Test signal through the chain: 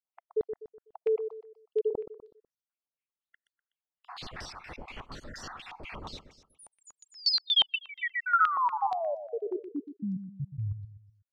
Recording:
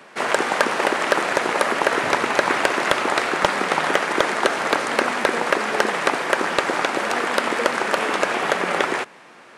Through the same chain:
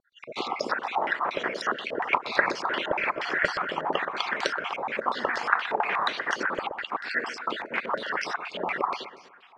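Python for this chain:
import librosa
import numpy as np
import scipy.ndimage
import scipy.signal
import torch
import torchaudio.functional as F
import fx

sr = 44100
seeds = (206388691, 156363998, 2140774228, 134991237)

p1 = fx.spec_dropout(x, sr, seeds[0], share_pct=59)
p2 = fx.wow_flutter(p1, sr, seeds[1], rate_hz=2.1, depth_cents=27.0)
p3 = p2 + fx.echo_feedback(p2, sr, ms=124, feedback_pct=39, wet_db=-9.5, dry=0)
p4 = fx.filter_held_lowpass(p3, sr, hz=8.4, low_hz=850.0, high_hz=5300.0)
y = p4 * librosa.db_to_amplitude(-8.5)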